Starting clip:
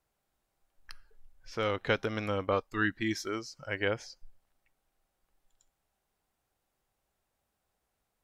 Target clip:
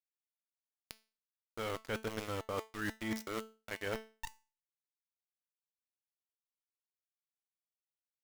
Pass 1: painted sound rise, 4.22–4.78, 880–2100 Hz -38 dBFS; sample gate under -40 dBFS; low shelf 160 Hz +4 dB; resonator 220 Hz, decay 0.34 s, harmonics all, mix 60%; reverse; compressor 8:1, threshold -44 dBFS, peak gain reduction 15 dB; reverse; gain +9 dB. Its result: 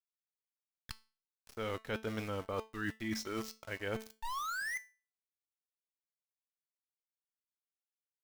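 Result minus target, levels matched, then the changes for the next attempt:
sample gate: distortion -9 dB
change: sample gate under -32 dBFS

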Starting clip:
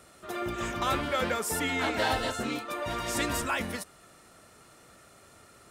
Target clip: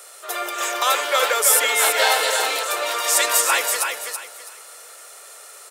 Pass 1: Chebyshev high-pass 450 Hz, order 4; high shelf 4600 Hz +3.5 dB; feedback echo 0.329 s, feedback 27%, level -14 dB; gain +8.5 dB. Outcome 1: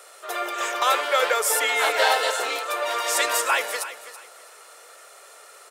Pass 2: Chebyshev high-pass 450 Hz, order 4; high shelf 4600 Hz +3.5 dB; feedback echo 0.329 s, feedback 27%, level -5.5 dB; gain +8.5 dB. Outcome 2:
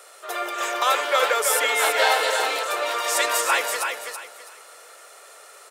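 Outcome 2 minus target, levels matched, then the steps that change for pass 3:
8000 Hz band -4.0 dB
change: high shelf 4600 Hz +13 dB

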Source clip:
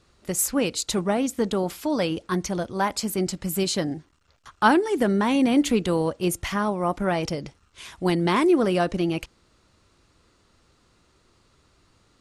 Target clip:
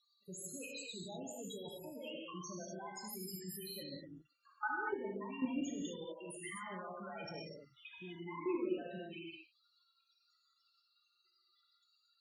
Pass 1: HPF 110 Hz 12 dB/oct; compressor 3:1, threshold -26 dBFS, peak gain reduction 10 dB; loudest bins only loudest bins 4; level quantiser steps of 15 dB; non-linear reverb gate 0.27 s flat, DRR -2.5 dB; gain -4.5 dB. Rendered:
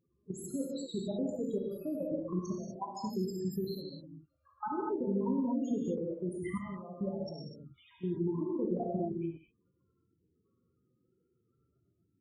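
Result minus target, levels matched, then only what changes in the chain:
1000 Hz band -4.0 dB
add after HPF: tilt shelf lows -9 dB, about 1100 Hz

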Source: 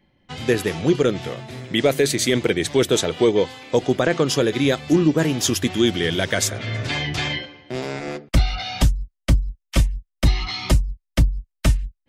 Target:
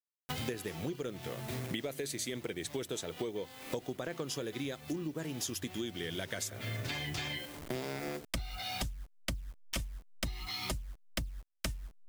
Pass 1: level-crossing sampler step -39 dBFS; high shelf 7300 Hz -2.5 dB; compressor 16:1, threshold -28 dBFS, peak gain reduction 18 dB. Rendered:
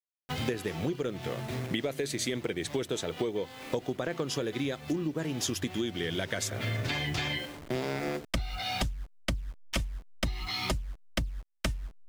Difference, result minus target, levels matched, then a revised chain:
compressor: peak gain reduction -6 dB; 8000 Hz band -3.0 dB
level-crossing sampler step -39 dBFS; high shelf 7300 Hz +8.5 dB; compressor 16:1, threshold -34.5 dBFS, peak gain reduction 24 dB

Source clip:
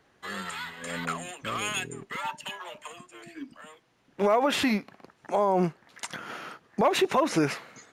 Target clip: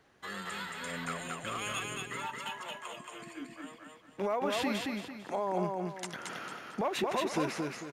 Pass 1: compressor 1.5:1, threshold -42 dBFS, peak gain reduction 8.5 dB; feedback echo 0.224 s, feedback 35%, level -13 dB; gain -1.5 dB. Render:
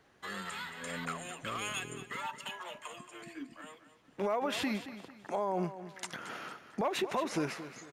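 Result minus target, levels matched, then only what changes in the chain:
echo-to-direct -10 dB
change: feedback echo 0.224 s, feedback 35%, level -3 dB

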